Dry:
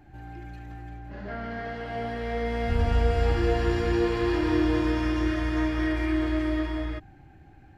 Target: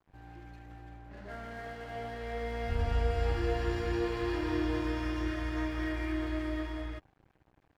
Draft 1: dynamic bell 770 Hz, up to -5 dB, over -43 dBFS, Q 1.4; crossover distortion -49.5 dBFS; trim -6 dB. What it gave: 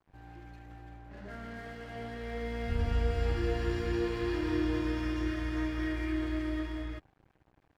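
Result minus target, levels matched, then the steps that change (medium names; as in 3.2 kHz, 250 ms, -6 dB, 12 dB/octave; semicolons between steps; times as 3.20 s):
1 kHz band -3.5 dB
change: dynamic bell 210 Hz, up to -5 dB, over -43 dBFS, Q 1.4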